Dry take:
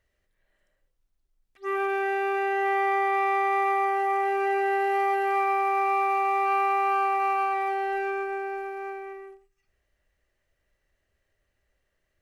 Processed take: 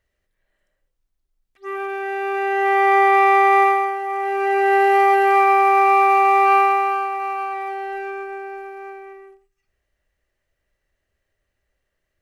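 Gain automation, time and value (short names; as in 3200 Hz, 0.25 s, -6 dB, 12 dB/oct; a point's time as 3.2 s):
1.99 s 0 dB
2.99 s +10.5 dB
3.63 s +10.5 dB
4 s -1 dB
4.77 s +10 dB
6.57 s +10 dB
7.1 s 0 dB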